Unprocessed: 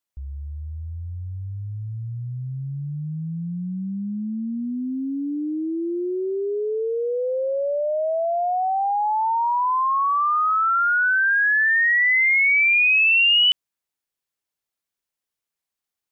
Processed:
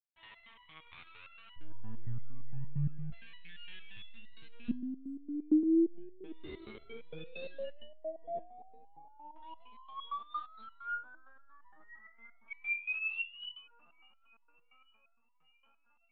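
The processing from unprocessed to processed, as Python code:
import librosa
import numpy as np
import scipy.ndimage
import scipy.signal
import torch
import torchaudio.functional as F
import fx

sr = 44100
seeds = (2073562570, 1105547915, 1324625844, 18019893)

y = fx.low_shelf(x, sr, hz=61.0, db=7.0)
y = fx.over_compress(y, sr, threshold_db=-26.0, ratio=-1.0)
y = fx.quant_dither(y, sr, seeds[0], bits=6, dither='none')
y = fx.filter_lfo_bandpass(y, sr, shape='square', hz=0.32, low_hz=210.0, high_hz=2600.0, q=1.6)
y = fx.echo_wet_bandpass(y, sr, ms=712, feedback_pct=72, hz=590.0, wet_db=-15)
y = fx.lpc_vocoder(y, sr, seeds[1], excitation='pitch_kept', order=10)
y = fx.resonator_held(y, sr, hz=8.7, low_hz=76.0, high_hz=980.0)
y = y * 10.0 ** (5.5 / 20.0)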